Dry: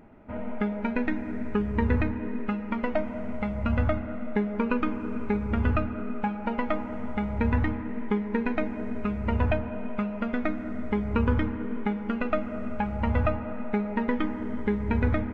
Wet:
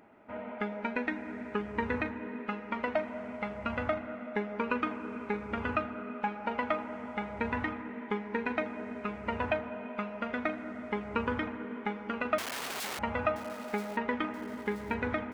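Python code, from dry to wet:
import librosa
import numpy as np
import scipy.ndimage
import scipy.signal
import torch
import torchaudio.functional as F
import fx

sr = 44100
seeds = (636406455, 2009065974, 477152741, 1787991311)

y = fx.overflow_wrap(x, sr, gain_db=31.5, at=(12.38, 12.99))
y = fx.highpass(y, sr, hz=600.0, slope=6)
y = fx.echo_feedback(y, sr, ms=978, feedback_pct=46, wet_db=-14.5)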